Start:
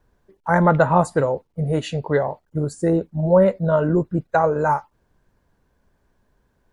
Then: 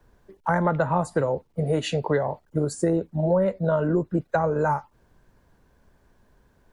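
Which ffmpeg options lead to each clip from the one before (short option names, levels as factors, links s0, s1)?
-filter_complex "[0:a]acrossover=split=92|250[s0][s1][s2];[s0]acompressor=threshold=0.00316:ratio=4[s3];[s1]acompressor=threshold=0.0178:ratio=4[s4];[s2]acompressor=threshold=0.0447:ratio=4[s5];[s3][s4][s5]amix=inputs=3:normalize=0,volume=1.68"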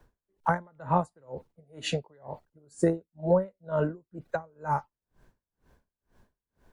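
-af "aeval=exprs='val(0)*pow(10,-37*(0.5-0.5*cos(2*PI*2.1*n/s))/20)':c=same"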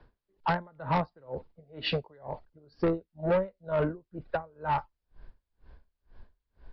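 -af "asubboost=boost=4.5:cutoff=71,aresample=11025,asoftclip=type=tanh:threshold=0.0668,aresample=44100,volume=1.41"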